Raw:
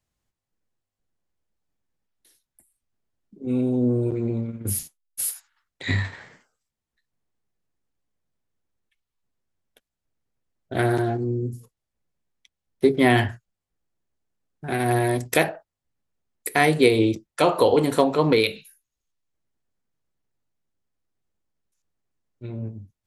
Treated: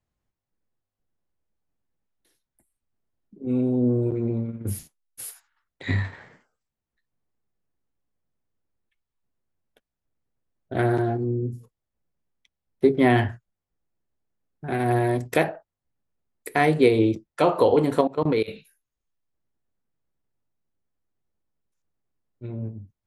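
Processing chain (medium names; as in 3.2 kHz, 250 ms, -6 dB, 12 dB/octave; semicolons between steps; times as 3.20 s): treble shelf 2.8 kHz -11 dB; 18.01–18.48 s: level held to a coarse grid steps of 21 dB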